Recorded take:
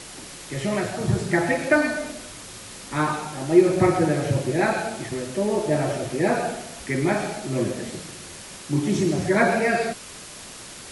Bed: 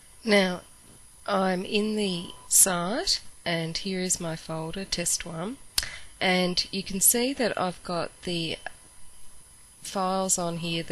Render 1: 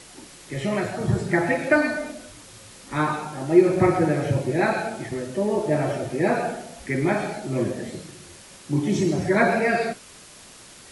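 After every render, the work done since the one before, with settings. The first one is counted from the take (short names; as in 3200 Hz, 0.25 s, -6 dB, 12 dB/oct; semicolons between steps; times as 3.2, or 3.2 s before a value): noise print and reduce 6 dB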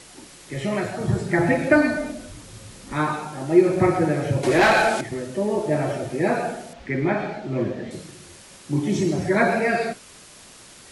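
1.39–2.93 low shelf 280 Hz +10 dB; 4.43–5.01 overdrive pedal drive 21 dB, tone 5900 Hz, clips at -8.5 dBFS; 6.73–7.91 LPF 3600 Hz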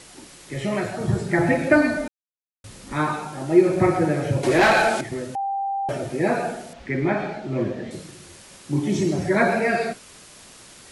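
2.08–2.64 mute; 5.35–5.89 bleep 789 Hz -22.5 dBFS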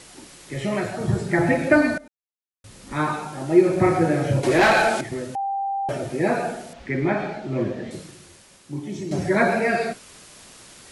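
1.98–3.08 fade in, from -20.5 dB; 3.83–4.4 doubler 30 ms -5 dB; 7.96–9.11 fade out quadratic, to -9.5 dB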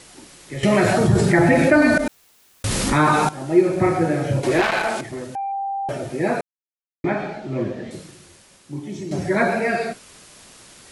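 0.63–3.29 fast leveller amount 70%; 4.61–5.52 core saturation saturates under 1300 Hz; 6.41–7.04 mute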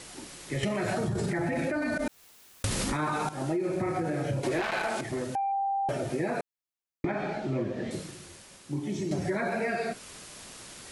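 limiter -13 dBFS, peak gain reduction 10 dB; compressor, threshold -27 dBFS, peak gain reduction 10.5 dB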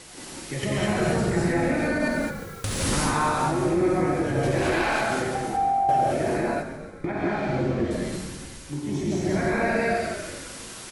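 frequency-shifting echo 0.141 s, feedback 63%, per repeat -47 Hz, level -10 dB; non-linear reverb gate 0.24 s rising, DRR -4.5 dB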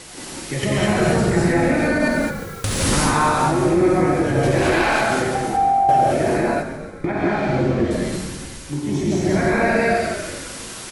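gain +6 dB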